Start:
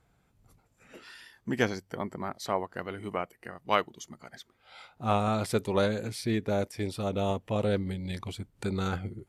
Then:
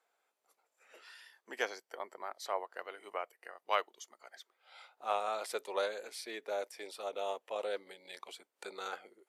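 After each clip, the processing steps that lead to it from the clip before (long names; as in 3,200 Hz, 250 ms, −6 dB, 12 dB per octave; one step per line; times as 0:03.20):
high-pass filter 470 Hz 24 dB per octave
level −5.5 dB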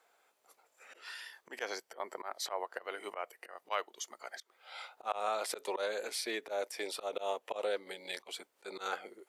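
volume swells 146 ms
downward compressor 2 to 1, threshold −44 dBFS, peak gain reduction 7.5 dB
level +9 dB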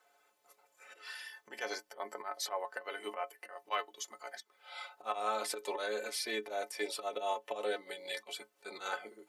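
stiff-string resonator 64 Hz, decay 0.27 s, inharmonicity 0.03
level +7.5 dB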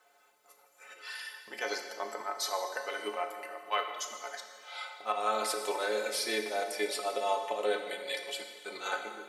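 dense smooth reverb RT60 1.8 s, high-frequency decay 1×, DRR 4.5 dB
level +3.5 dB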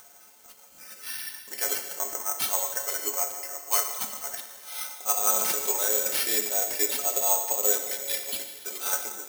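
upward compression, threshold −51 dBFS
bad sample-rate conversion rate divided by 6×, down none, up zero stuff
level −1 dB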